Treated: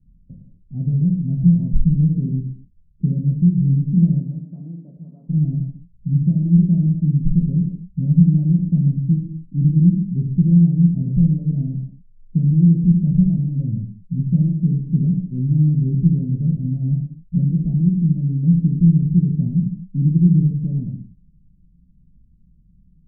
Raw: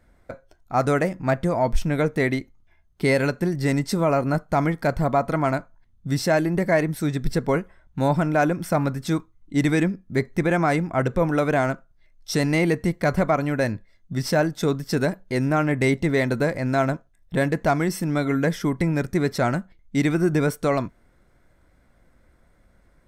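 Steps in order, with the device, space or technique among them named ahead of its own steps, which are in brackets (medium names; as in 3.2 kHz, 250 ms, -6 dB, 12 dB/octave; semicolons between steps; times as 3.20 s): 4.18–5.28 s: high-pass 330 Hz -> 730 Hz 12 dB/octave; the neighbour's flat through the wall (low-pass 190 Hz 24 dB/octave; peaking EQ 180 Hz +7 dB 0.45 oct); gated-style reverb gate 280 ms falling, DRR -1 dB; trim +3.5 dB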